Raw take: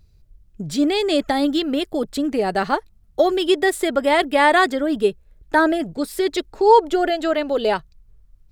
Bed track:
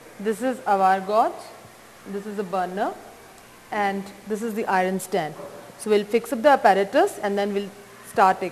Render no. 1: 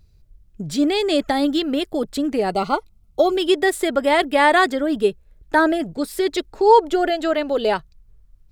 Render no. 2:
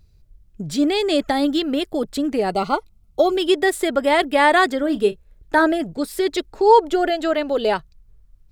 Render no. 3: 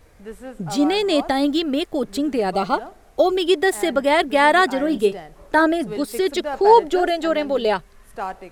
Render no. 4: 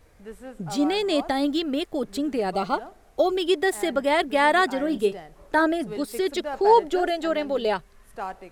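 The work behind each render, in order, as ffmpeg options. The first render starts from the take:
-filter_complex "[0:a]asettb=1/sr,asplit=3[s0][s1][s2];[s0]atrim=end=2.504[s3];[s1]atrim=start=2.5:end=3.36,asetpts=PTS-STARTPTS,afade=t=in:d=0.004:c=qsin,afade=t=out:st=0.856:d=0.004:c=qsin,asuperstop=centerf=1700:order=20:qfactor=3.4[s4];[s2]atrim=start=3.356[s5];[s3][s4]acrossfade=d=0.004:c1=hsin:c2=qsin[s6];[s6][s5]acrossfade=d=0.004:c1=qsin:c2=hsin"
-filter_complex "[0:a]asettb=1/sr,asplit=3[s0][s1][s2];[s0]atrim=end=4.784[s3];[s1]atrim=start=4.78:end=5.65,asetpts=PTS-STARTPTS,afade=t=in:d=0.004:c=qsin,afade=t=out:st=0.866:d=0.004:c=qsin,asplit=2[s4][s5];[s5]adelay=34,volume=0.211[s6];[s4][s6]amix=inputs=2:normalize=0,atrim=end_sample=38367[s7];[s2]atrim=start=5.646[s8];[s3][s7]acrossfade=d=0.004:c1=hsin:c2=qsin[s9];[s9][s8]acrossfade=d=0.004:c1=qsin:c2=hsin"
-filter_complex "[1:a]volume=0.266[s0];[0:a][s0]amix=inputs=2:normalize=0"
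-af "volume=0.596"

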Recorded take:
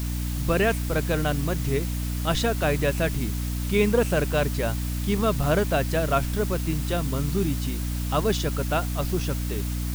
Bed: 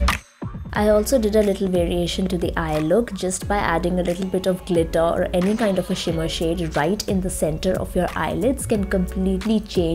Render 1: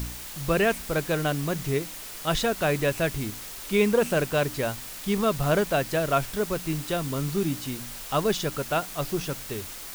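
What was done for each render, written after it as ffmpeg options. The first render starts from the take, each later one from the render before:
-af "bandreject=f=60:t=h:w=4,bandreject=f=120:t=h:w=4,bandreject=f=180:t=h:w=4,bandreject=f=240:t=h:w=4,bandreject=f=300:t=h:w=4"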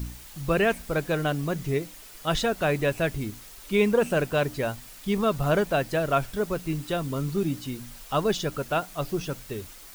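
-af "afftdn=nr=8:nf=-39"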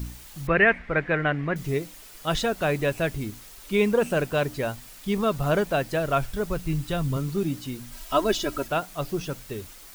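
-filter_complex "[0:a]asettb=1/sr,asplit=3[s0][s1][s2];[s0]atrim=end=0.474[s3];[s1]atrim=start=0.47:end=1.56,asetpts=PTS-STARTPTS,afade=t=in:d=0.004:c=qsin,afade=t=out:st=1.086:d=0.004:c=qsin,lowpass=f=2000:t=q:w=4.3[s4];[s2]atrim=start=1.556[s5];[s3][s4]acrossfade=d=0.004:c1=hsin:c2=qsin[s6];[s6][s5]acrossfade=d=0.004:c1=qsin:c2=hsin,asettb=1/sr,asplit=3[s7][s8][s9];[s7]atrim=end=5.924[s10];[s8]atrim=start=5.92:end=7.17,asetpts=PTS-STARTPTS,afade=t=in:d=0.004:c=qsin,afade=t=out:st=1.246:d=0.004:c=qsin,asubboost=boost=10:cutoff=150[s11];[s9]atrim=start=7.166[s12];[s10][s11]acrossfade=d=0.004:c1=hsin:c2=qsin[s13];[s13][s12]acrossfade=d=0.004:c1=qsin:c2=hsin,asettb=1/sr,asplit=3[s14][s15][s16];[s14]atrim=end=7.924[s17];[s15]atrim=start=7.92:end=8.68,asetpts=PTS-STARTPTS,afade=t=in:d=0.004:c=qsin,afade=t=out:st=0.756:d=0.004:c=qsin,aecho=1:1:3.1:0.94,atrim=end_sample=33516[s18];[s16]atrim=start=8.676[s19];[s17][s18]acrossfade=d=0.004:c1=hsin:c2=qsin[s20];[s20][s19]acrossfade=d=0.004:c1=qsin:c2=hsin"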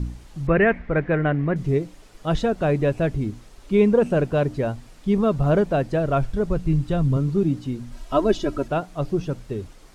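-af "lowpass=8000,tiltshelf=f=970:g=7"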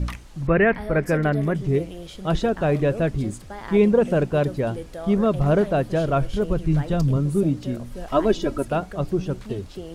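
-filter_complex "[1:a]volume=0.158[s0];[0:a][s0]amix=inputs=2:normalize=0"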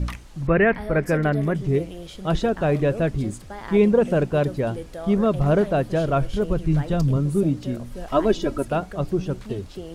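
-af anull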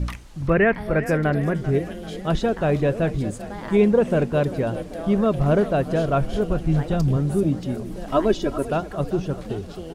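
-filter_complex "[0:a]asplit=6[s0][s1][s2][s3][s4][s5];[s1]adelay=391,afreqshift=31,volume=0.178[s6];[s2]adelay=782,afreqshift=62,volume=0.1[s7];[s3]adelay=1173,afreqshift=93,volume=0.0556[s8];[s4]adelay=1564,afreqshift=124,volume=0.0313[s9];[s5]adelay=1955,afreqshift=155,volume=0.0176[s10];[s0][s6][s7][s8][s9][s10]amix=inputs=6:normalize=0"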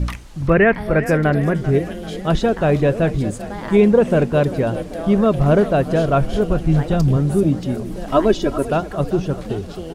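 -af "volume=1.68,alimiter=limit=0.708:level=0:latency=1"

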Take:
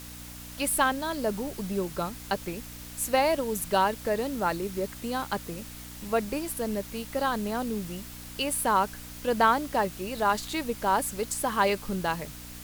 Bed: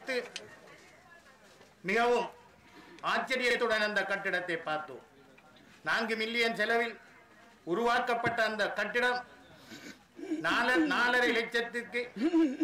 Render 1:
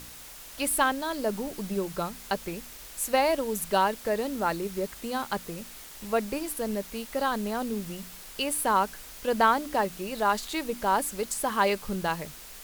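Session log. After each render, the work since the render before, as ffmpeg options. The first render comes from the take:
-af "bandreject=f=60:t=h:w=4,bandreject=f=120:t=h:w=4,bandreject=f=180:t=h:w=4,bandreject=f=240:t=h:w=4,bandreject=f=300:t=h:w=4"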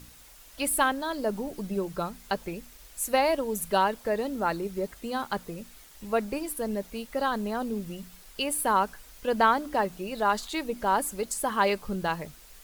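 -af "afftdn=nr=8:nf=-45"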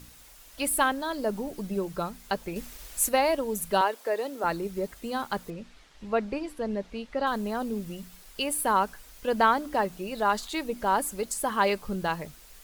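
-filter_complex "[0:a]asettb=1/sr,asplit=3[s0][s1][s2];[s0]atrim=end=3.814[s3];[s1]atrim=start=3.81:end=4.44,asetpts=PTS-STARTPTS,afade=t=in:d=0.004:c=qsin,afade=t=out:st=0.626:d=0.004:c=qsin,highpass=f=320:w=0.5412,highpass=f=320:w=1.3066[s4];[s2]atrim=start=4.436[s5];[s3][s4]acrossfade=d=0.004:c1=hsin:c2=qsin[s6];[s6][s5]acrossfade=d=0.004:c1=qsin:c2=hsin,asettb=1/sr,asplit=3[s7][s8][s9];[s7]atrim=end=5.504[s10];[s8]atrim=start=5.5:end=7.27,asetpts=PTS-STARTPTS,afade=t=in:d=0.004:c=qsin,afade=t=out:st=1.766:d=0.004:c=qsin,lowpass=4300[s11];[s9]atrim=start=7.266[s12];[s10][s11]acrossfade=d=0.004:c1=hsin:c2=qsin[s13];[s13][s12]acrossfade=d=0.004:c1=qsin:c2=hsin,asplit=3[s14][s15][s16];[s14]atrim=end=2.562[s17];[s15]atrim=start=2.558:end=3.092,asetpts=PTS-STARTPTS,volume=2[s18];[s16]atrim=start=3.088[s19];[s17][s18]acrossfade=d=0.004:c1=hsin:c2=hsin[s20];[s20][s19]acrossfade=d=0.004:c1=hsin:c2=hsin"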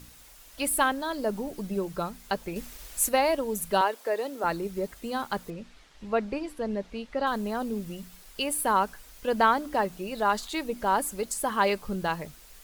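-af anull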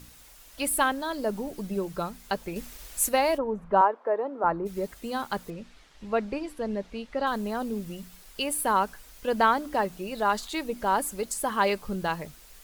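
-filter_complex "[0:a]asplit=3[s0][s1][s2];[s0]afade=t=out:st=3.37:d=0.02[s3];[s1]lowpass=f=1100:t=q:w=1.7,afade=t=in:st=3.37:d=0.02,afade=t=out:st=4.65:d=0.02[s4];[s2]afade=t=in:st=4.65:d=0.02[s5];[s3][s4][s5]amix=inputs=3:normalize=0"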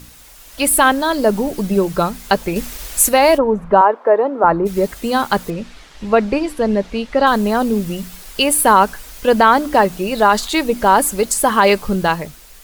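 -af "dynaudnorm=f=110:g=11:m=1.88,alimiter=level_in=2.82:limit=0.891:release=50:level=0:latency=1"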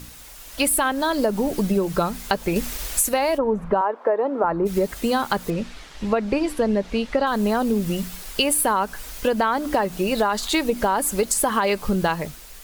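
-af "alimiter=limit=0.631:level=0:latency=1:release=256,acompressor=threshold=0.141:ratio=6"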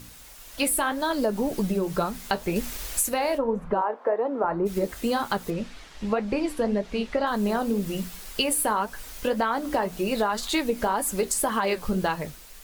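-af "flanger=delay=8.4:depth=5.9:regen=-60:speed=1.9:shape=sinusoidal"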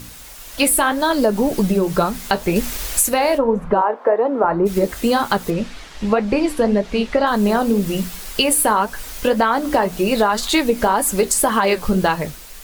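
-af "volume=2.66,alimiter=limit=0.708:level=0:latency=1"

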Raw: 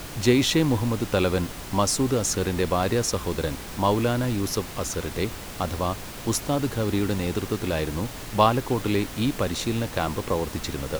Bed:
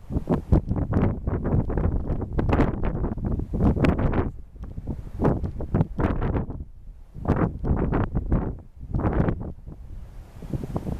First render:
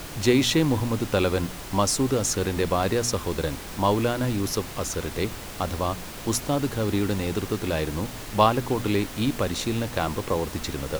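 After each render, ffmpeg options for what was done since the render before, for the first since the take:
-af "bandreject=f=60:t=h:w=4,bandreject=f=120:t=h:w=4,bandreject=f=180:t=h:w=4,bandreject=f=240:t=h:w=4"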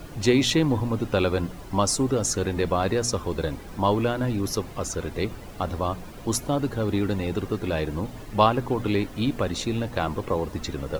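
-af "afftdn=nr=12:nf=-38"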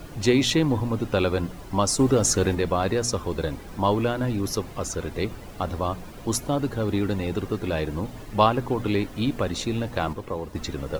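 -filter_complex "[0:a]asplit=5[s0][s1][s2][s3][s4];[s0]atrim=end=1.992[s5];[s1]atrim=start=1.988:end=2.552,asetpts=PTS-STARTPTS,volume=1.58[s6];[s2]atrim=start=2.548:end=10.132[s7];[s3]atrim=start=10.128:end=10.552,asetpts=PTS-STARTPTS,volume=0.562[s8];[s4]atrim=start=10.548[s9];[s5][s6]acrossfade=d=0.004:c1=hsin:c2=hsin[s10];[s10][s7]acrossfade=d=0.004:c1=hsin:c2=hsin[s11];[s11][s8]acrossfade=d=0.004:c1=hsin:c2=hsin[s12];[s12][s9]acrossfade=d=0.004:c1=hsin:c2=hsin"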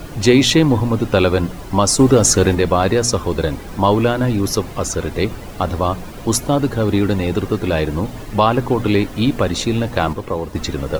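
-af "alimiter=level_in=2.66:limit=0.891:release=50:level=0:latency=1"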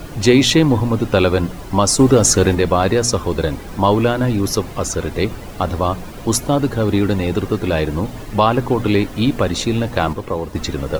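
-af anull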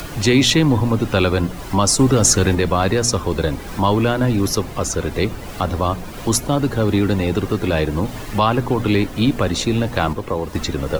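-filter_complex "[0:a]acrossover=split=250|900[s0][s1][s2];[s1]alimiter=limit=0.211:level=0:latency=1[s3];[s2]acompressor=mode=upward:threshold=0.0355:ratio=2.5[s4];[s0][s3][s4]amix=inputs=3:normalize=0"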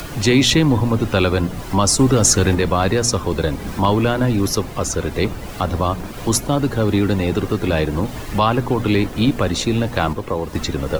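-filter_complex "[1:a]volume=0.282[s0];[0:a][s0]amix=inputs=2:normalize=0"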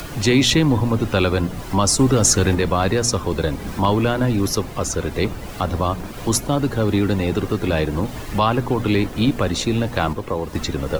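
-af "volume=0.841"

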